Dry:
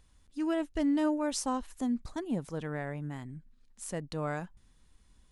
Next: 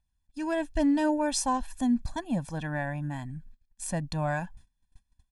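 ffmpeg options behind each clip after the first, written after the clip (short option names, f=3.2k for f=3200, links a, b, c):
-af "agate=range=-24dB:threshold=-56dB:ratio=16:detection=peak,aphaser=in_gain=1:out_gain=1:delay=4.1:decay=0.22:speed=0.51:type=triangular,aecho=1:1:1.2:0.92,volume=2.5dB"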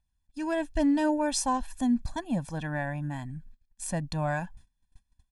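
-af anull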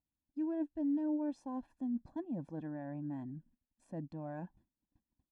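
-af "areverse,acompressor=threshold=-34dB:ratio=6,areverse,bandpass=f=330:t=q:w=2.2:csg=0,volume=4dB"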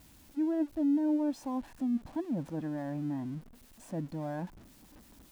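-af "aeval=exprs='val(0)+0.5*0.00188*sgn(val(0))':c=same,volume=5.5dB"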